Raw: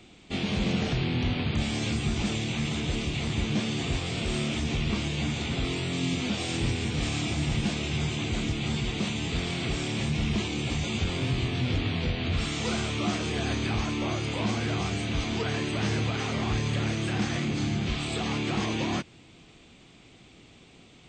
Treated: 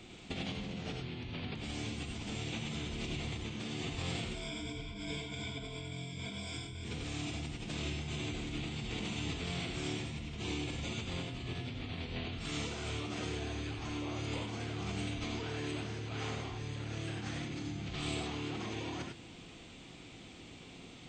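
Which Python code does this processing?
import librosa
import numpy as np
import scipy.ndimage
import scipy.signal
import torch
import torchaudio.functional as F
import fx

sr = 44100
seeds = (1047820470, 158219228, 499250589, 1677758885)

y = fx.ripple_eq(x, sr, per_octave=1.7, db=17, at=(4.33, 6.83), fade=0.02)
y = fx.over_compress(y, sr, threshold_db=-35.0, ratio=-1.0)
y = fx.rev_gated(y, sr, seeds[0], gate_ms=120, shape='rising', drr_db=2.5)
y = y * librosa.db_to_amplitude(-7.0)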